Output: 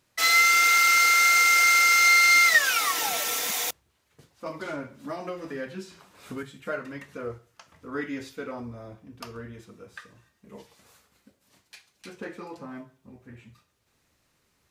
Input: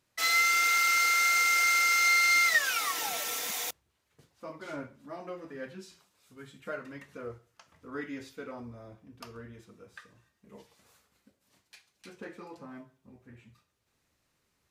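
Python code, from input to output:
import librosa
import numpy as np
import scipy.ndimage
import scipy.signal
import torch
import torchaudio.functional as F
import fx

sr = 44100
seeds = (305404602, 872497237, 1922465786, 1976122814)

y = fx.band_squash(x, sr, depth_pct=100, at=(4.46, 6.43))
y = F.gain(torch.from_numpy(y), 6.0).numpy()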